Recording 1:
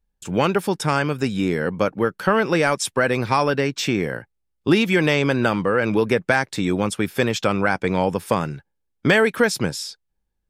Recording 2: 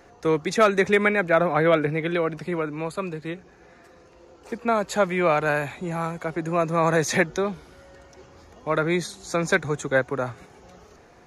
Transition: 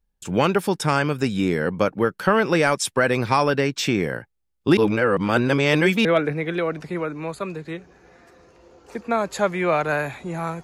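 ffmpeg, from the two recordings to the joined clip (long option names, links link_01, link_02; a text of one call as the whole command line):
ffmpeg -i cue0.wav -i cue1.wav -filter_complex "[0:a]apad=whole_dur=10.63,atrim=end=10.63,asplit=2[link_01][link_02];[link_01]atrim=end=4.772[link_03];[link_02]atrim=start=4.768:end=6.052,asetpts=PTS-STARTPTS,areverse[link_04];[1:a]atrim=start=1.618:end=6.2[link_05];[link_03][link_04]acrossfade=duration=0.004:curve1=hsin:curve2=hsin[link_06];[link_06][link_05]acrossfade=duration=0.004:curve1=hsin:curve2=hsin" out.wav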